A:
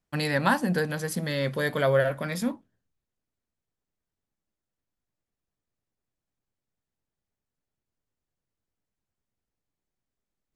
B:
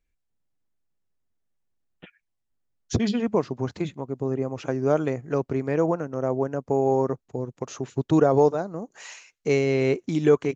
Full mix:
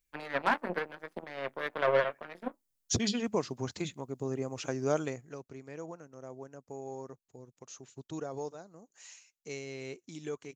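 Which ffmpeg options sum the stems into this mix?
ffmpeg -i stem1.wav -i stem2.wav -filter_complex "[0:a]highshelf=frequency=2900:gain=-11,aeval=exprs='0.299*(cos(1*acos(clip(val(0)/0.299,-1,1)))-cos(1*PI/2))+0.0188*(cos(5*acos(clip(val(0)/0.299,-1,1)))-cos(5*PI/2))+0.0237*(cos(6*acos(clip(val(0)/0.299,-1,1)))-cos(6*PI/2))+0.0531*(cos(7*acos(clip(val(0)/0.299,-1,1)))-cos(7*PI/2))':channel_layout=same,acrossover=split=260 3200:gain=0.126 1 0.1[link_01][link_02][link_03];[link_01][link_02][link_03]amix=inputs=3:normalize=0,volume=-3dB[link_04];[1:a]highshelf=frequency=2400:gain=11,volume=-8.5dB,afade=type=out:start_time=4.96:duration=0.41:silence=0.237137[link_05];[link_04][link_05]amix=inputs=2:normalize=0,highshelf=frequency=6400:gain=9.5" out.wav

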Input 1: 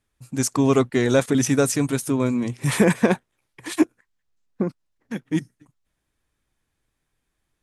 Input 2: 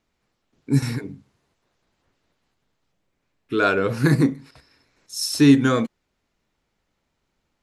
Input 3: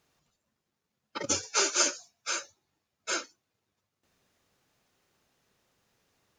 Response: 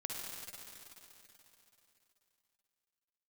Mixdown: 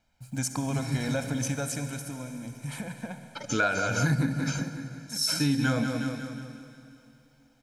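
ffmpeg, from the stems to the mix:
-filter_complex "[0:a]acompressor=threshold=-21dB:ratio=6,acrusher=bits=9:mix=0:aa=0.000001,volume=-8.5dB,afade=type=out:start_time=1.47:duration=0.78:silence=0.354813,asplit=3[link_01][link_02][link_03];[link_02]volume=-3.5dB[link_04];[1:a]volume=-1.5dB,asplit=3[link_05][link_06][link_07];[link_06]volume=-15.5dB[link_08];[link_07]volume=-10dB[link_09];[2:a]acompressor=threshold=-33dB:ratio=6,adelay=2200,volume=-4dB,asplit=2[link_10][link_11];[link_11]volume=-12dB[link_12];[link_03]apad=whole_len=336458[link_13];[link_05][link_13]sidechaincompress=threshold=-48dB:ratio=8:attack=31:release=406[link_14];[3:a]atrim=start_sample=2205[link_15];[link_04][link_08][link_12]amix=inputs=3:normalize=0[link_16];[link_16][link_15]afir=irnorm=-1:irlink=0[link_17];[link_09]aecho=0:1:182|364|546|728|910|1092|1274:1|0.51|0.26|0.133|0.0677|0.0345|0.0176[link_18];[link_01][link_14][link_10][link_17][link_18]amix=inputs=5:normalize=0,aecho=1:1:1.3:0.8,acompressor=threshold=-22dB:ratio=6"

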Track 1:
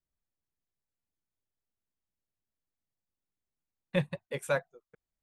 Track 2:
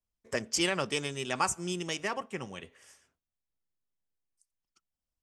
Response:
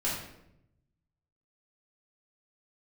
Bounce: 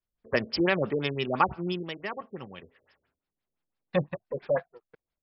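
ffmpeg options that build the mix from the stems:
-filter_complex "[0:a]aeval=exprs='if(lt(val(0),0),0.447*val(0),val(0))':channel_layout=same,highpass=frequency=230:poles=1,volume=-0.5dB[link_01];[1:a]volume=-2dB,afade=type=out:start_time=1.55:duration=0.37:silence=0.398107[link_02];[link_01][link_02]amix=inputs=2:normalize=0,dynaudnorm=framelen=110:gausssize=3:maxgain=8.5dB,afftfilt=real='re*lt(b*sr/1024,600*pow(5600/600,0.5+0.5*sin(2*PI*5.9*pts/sr)))':imag='im*lt(b*sr/1024,600*pow(5600/600,0.5+0.5*sin(2*PI*5.9*pts/sr)))':win_size=1024:overlap=0.75"

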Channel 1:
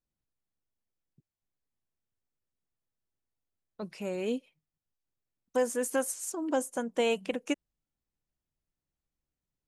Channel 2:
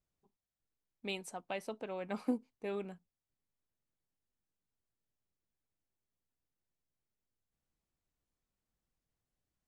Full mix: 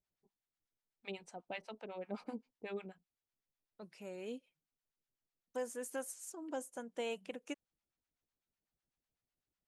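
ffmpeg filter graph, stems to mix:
ffmpeg -i stem1.wav -i stem2.wav -filter_complex "[0:a]volume=-11.5dB[link_01];[1:a]lowpass=5700,acrossover=split=710[link_02][link_03];[link_02]aeval=exprs='val(0)*(1-1/2+1/2*cos(2*PI*8*n/s))':channel_layout=same[link_04];[link_03]aeval=exprs='val(0)*(1-1/2-1/2*cos(2*PI*8*n/s))':channel_layout=same[link_05];[link_04][link_05]amix=inputs=2:normalize=0,volume=1.5dB[link_06];[link_01][link_06]amix=inputs=2:normalize=0,lowshelf=frequency=160:gain=-6.5,bandreject=frequency=1100:width=22" out.wav

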